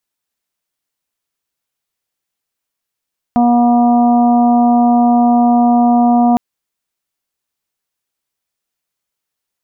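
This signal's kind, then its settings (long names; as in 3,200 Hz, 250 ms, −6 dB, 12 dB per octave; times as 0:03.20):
steady harmonic partials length 3.01 s, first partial 240 Hz, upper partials −19.5/−3/−13.5/−20 dB, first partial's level −9 dB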